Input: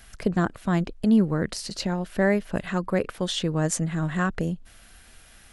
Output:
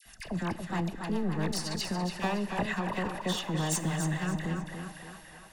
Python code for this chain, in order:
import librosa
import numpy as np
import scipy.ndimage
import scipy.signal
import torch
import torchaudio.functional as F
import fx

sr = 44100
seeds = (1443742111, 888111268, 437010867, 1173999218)

p1 = np.minimum(x, 2.0 * 10.0 ** (-25.0 / 20.0) - x)
p2 = fx.low_shelf(p1, sr, hz=130.0, db=-10.5)
p3 = p2 + 0.47 * np.pad(p2, (int(1.1 * sr / 1000.0), 0))[:len(p2)]
p4 = fx.over_compress(p3, sr, threshold_db=-29.0, ratio=-1.0)
p5 = p3 + (p4 * 10.0 ** (1.0 / 20.0))
p6 = fx.dispersion(p5, sr, late='lows', ms=57.0, hz=1200.0)
p7 = fx.rotary_switch(p6, sr, hz=7.5, then_hz=0.9, switch_at_s=1.67)
p8 = p7 + fx.echo_wet_bandpass(p7, sr, ms=284, feedback_pct=67, hz=1200.0, wet_db=-7.0, dry=0)
p9 = fx.rev_schroeder(p8, sr, rt60_s=1.3, comb_ms=25, drr_db=15.5)
p10 = fx.echo_warbled(p9, sr, ms=282, feedback_pct=35, rate_hz=2.8, cents=57, wet_db=-7.5)
y = p10 * 10.0 ** (-8.0 / 20.0)